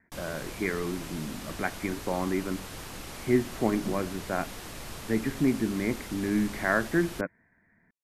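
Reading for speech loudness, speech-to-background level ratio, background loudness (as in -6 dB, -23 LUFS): -30.5 LUFS, 10.0 dB, -40.5 LUFS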